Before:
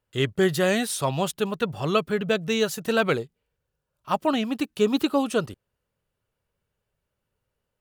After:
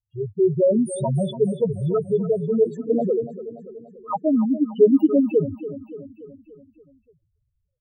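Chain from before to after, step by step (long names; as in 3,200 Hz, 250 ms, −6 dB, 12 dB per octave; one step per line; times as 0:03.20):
0:02.64–0:03.05: channel vocoder with a chord as carrier major triad, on A#3
automatic gain control gain up to 14 dB
spectral peaks only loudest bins 2
repeating echo 288 ms, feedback 56%, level −14 dB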